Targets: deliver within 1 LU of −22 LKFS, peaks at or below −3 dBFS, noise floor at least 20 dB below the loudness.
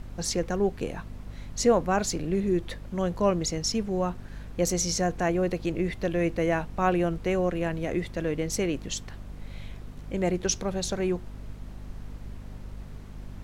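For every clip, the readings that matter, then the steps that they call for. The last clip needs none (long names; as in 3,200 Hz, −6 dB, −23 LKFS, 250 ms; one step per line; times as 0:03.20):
mains hum 50 Hz; hum harmonics up to 250 Hz; level of the hum −39 dBFS; background noise floor −43 dBFS; target noise floor −48 dBFS; integrated loudness −28.0 LKFS; sample peak −11.5 dBFS; target loudness −22.0 LKFS
→ hum removal 50 Hz, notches 5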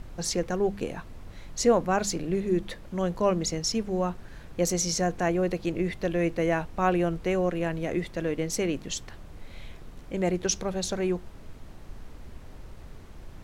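mains hum none found; background noise floor −46 dBFS; target noise floor −48 dBFS
→ noise reduction from a noise print 6 dB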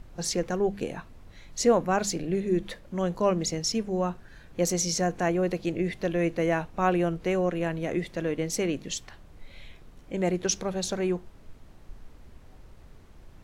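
background noise floor −51 dBFS; integrated loudness −28.0 LKFS; sample peak −11.5 dBFS; target loudness −22.0 LKFS
→ level +6 dB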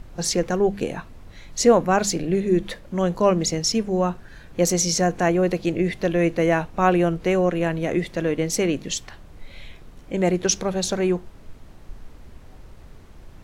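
integrated loudness −22.0 LKFS; sample peak −5.5 dBFS; background noise floor −45 dBFS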